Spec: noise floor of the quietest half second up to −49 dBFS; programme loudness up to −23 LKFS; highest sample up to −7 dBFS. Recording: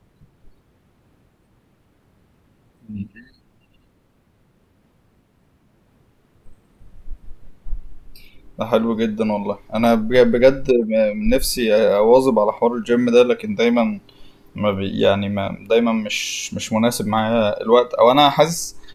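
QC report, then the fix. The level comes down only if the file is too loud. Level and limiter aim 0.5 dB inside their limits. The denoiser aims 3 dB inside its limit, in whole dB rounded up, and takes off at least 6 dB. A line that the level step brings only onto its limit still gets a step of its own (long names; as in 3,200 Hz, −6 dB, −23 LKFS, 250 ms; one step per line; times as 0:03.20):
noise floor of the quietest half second −60 dBFS: in spec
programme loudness −17.5 LKFS: out of spec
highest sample −2.0 dBFS: out of spec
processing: level −6 dB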